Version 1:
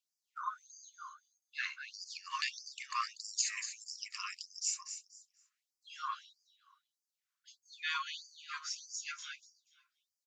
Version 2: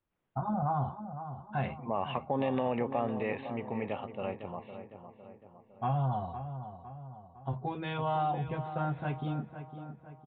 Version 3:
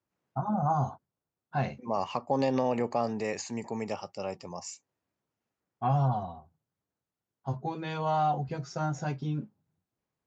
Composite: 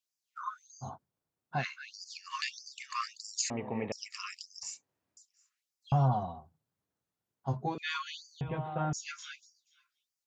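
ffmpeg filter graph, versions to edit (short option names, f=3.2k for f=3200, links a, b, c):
-filter_complex "[2:a]asplit=3[a][b][c];[1:a]asplit=2[d][e];[0:a]asplit=6[f][g][h][i][j][k];[f]atrim=end=0.91[l];[a]atrim=start=0.81:end=1.65[m];[g]atrim=start=1.55:end=3.502[n];[d]atrim=start=3.498:end=3.922[o];[h]atrim=start=3.918:end=4.632[p];[b]atrim=start=4.628:end=5.172[q];[i]atrim=start=5.168:end=5.922[r];[c]atrim=start=5.918:end=7.782[s];[j]atrim=start=7.778:end=8.412[t];[e]atrim=start=8.408:end=8.932[u];[k]atrim=start=8.928[v];[l][m]acrossfade=d=0.1:c1=tri:c2=tri[w];[w][n]acrossfade=d=0.1:c1=tri:c2=tri[x];[x][o]acrossfade=d=0.004:c1=hsin:c2=hsin[y];[y][p]acrossfade=d=0.004:c1=hsin:c2=hsin[z];[z][q]acrossfade=d=0.004:c1=hsin:c2=hsin[aa];[aa][r]acrossfade=d=0.004:c1=hsin:c2=hsin[ab];[ab][s]acrossfade=d=0.004:c1=hsin:c2=hsin[ac];[ac][t]acrossfade=d=0.004:c1=hsin:c2=hsin[ad];[ad][u]acrossfade=d=0.004:c1=hsin:c2=hsin[ae];[ae][v]acrossfade=d=0.004:c1=hsin:c2=hsin"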